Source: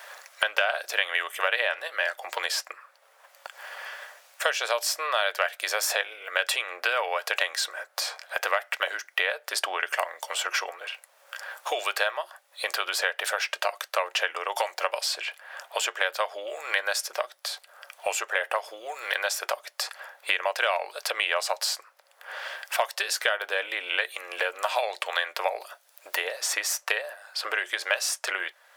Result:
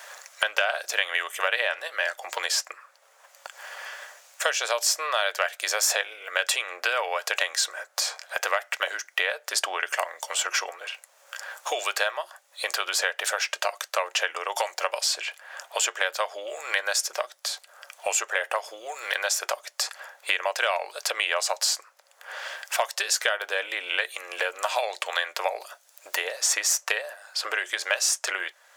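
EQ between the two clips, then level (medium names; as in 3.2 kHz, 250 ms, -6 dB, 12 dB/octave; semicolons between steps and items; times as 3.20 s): peaking EQ 6.8 kHz +8 dB 0.66 oct; 0.0 dB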